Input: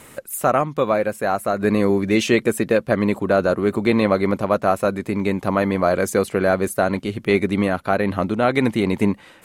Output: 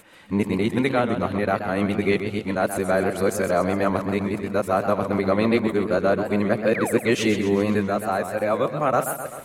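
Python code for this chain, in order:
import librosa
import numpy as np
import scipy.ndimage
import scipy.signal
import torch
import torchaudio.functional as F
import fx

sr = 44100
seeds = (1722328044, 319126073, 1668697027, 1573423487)

y = x[::-1].copy()
y = fx.spec_paint(y, sr, seeds[0], shape='fall', start_s=6.74, length_s=0.25, low_hz=230.0, high_hz=2600.0, level_db=-26.0)
y = fx.echo_warbled(y, sr, ms=129, feedback_pct=60, rate_hz=2.8, cents=136, wet_db=-9)
y = F.gain(torch.from_numpy(y), -3.5).numpy()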